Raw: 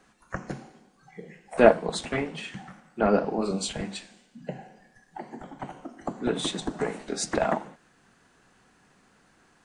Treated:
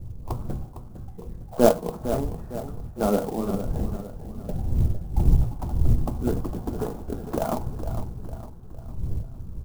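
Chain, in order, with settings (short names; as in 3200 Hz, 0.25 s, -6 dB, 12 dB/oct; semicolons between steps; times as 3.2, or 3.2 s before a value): tape start at the beginning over 0.50 s; wind noise 120 Hz -34 dBFS; steep low-pass 1300 Hz 36 dB/oct; low shelf 140 Hz +10.5 dB; resonator 120 Hz, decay 0.19 s, harmonics all, mix 50%; on a send: feedback echo 0.456 s, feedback 46%, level -11 dB; on the sum: clock jitter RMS 0.039 ms; gain +2 dB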